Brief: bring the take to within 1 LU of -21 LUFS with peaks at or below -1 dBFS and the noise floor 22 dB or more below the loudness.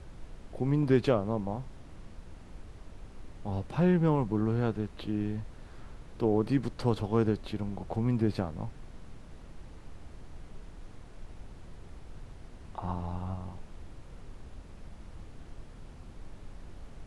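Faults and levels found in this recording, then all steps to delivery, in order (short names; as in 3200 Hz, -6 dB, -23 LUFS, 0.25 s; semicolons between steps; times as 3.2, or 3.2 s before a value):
noise floor -49 dBFS; noise floor target -53 dBFS; loudness -31.0 LUFS; peak -12.0 dBFS; loudness target -21.0 LUFS
-> noise print and reduce 6 dB; gain +10 dB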